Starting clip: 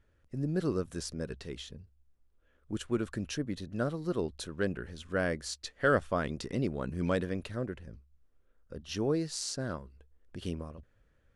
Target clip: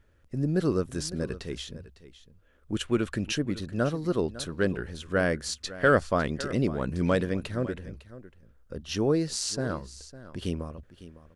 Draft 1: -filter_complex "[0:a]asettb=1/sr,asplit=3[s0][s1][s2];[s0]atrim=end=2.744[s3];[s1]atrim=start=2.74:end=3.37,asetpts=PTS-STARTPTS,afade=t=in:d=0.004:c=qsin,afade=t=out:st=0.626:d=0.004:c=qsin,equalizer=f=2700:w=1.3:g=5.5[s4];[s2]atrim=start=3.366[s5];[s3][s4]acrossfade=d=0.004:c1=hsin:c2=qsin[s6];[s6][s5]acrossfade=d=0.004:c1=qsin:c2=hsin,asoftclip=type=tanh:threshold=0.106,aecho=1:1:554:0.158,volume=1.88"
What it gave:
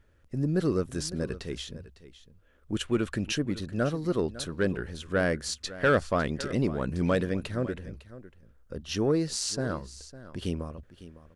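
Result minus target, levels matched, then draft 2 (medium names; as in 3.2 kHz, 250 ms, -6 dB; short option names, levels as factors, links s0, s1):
saturation: distortion +16 dB
-filter_complex "[0:a]asettb=1/sr,asplit=3[s0][s1][s2];[s0]atrim=end=2.744[s3];[s1]atrim=start=2.74:end=3.37,asetpts=PTS-STARTPTS,afade=t=in:d=0.004:c=qsin,afade=t=out:st=0.626:d=0.004:c=qsin,equalizer=f=2700:w=1.3:g=5.5[s4];[s2]atrim=start=3.366[s5];[s3][s4]acrossfade=d=0.004:c1=hsin:c2=qsin[s6];[s6][s5]acrossfade=d=0.004:c1=qsin:c2=hsin,asoftclip=type=tanh:threshold=0.335,aecho=1:1:554:0.158,volume=1.88"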